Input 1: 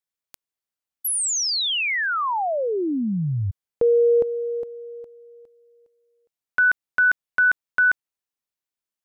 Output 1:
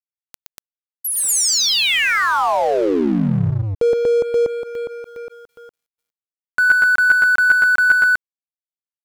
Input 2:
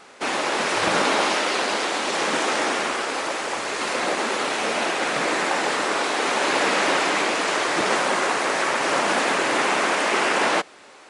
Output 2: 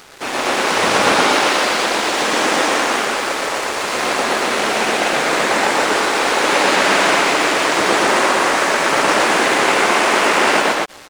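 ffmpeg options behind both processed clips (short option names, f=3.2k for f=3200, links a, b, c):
-af "aecho=1:1:119.5|239.1:0.891|1,acompressor=mode=upward:threshold=-20dB:ratio=2.5:attack=0.21:release=91:knee=2.83:detection=peak,aeval=exprs='sgn(val(0))*max(abs(val(0))-0.0211,0)':c=same,volume=3.5dB"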